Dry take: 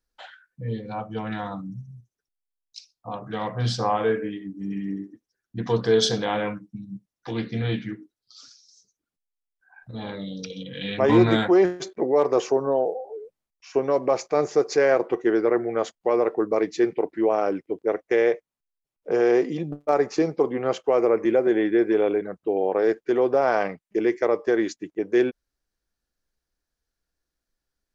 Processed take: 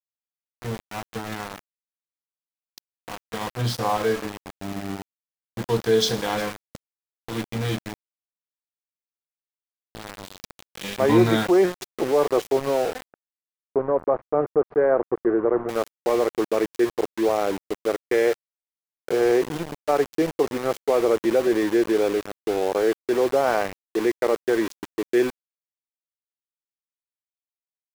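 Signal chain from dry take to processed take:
feedback echo with a high-pass in the loop 357 ms, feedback 16%, high-pass 760 Hz, level −20 dB
centre clipping without the shift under −27.5 dBFS
0:13.12–0:15.69: low-pass filter 1,400 Hz 24 dB per octave

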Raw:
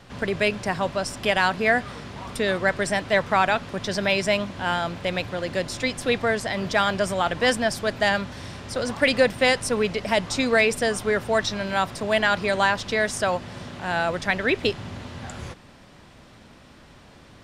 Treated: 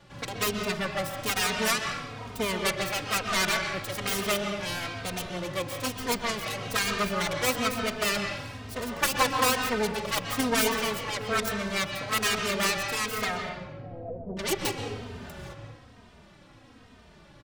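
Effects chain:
phase distortion by the signal itself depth 0.88 ms
0:13.49–0:14.37: Butterworth low-pass 660 Hz 36 dB per octave
on a send at −3.5 dB: convolution reverb RT60 1.1 s, pre-delay 117 ms
on the sum: barber-pole flanger 3 ms −1.1 Hz
level −3 dB

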